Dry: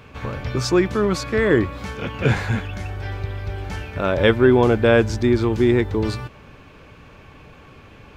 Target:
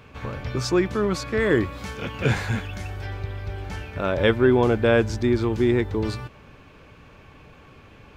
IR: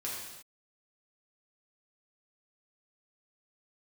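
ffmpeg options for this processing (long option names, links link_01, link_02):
-filter_complex "[0:a]asettb=1/sr,asplit=3[link_01][link_02][link_03];[link_01]atrim=end=1.404[link_04];[link_02]atrim=start=1.4:end=3.06,asetpts=PTS-STARTPTS,afade=type=in:duration=0.004:curve=qsin,afade=type=out:start_time=1.656:duration=0.004:curve=qsin,highshelf=frequency=3900:gain=6[link_05];[link_03]atrim=start=3.056[link_06];[link_04][link_05]acrossfade=duration=0.004:curve1=hsin:curve2=qsin[link_07];[link_07][link_06]acrossfade=duration=0.004:curve1=qsin:curve2=hsin,volume=-3.5dB"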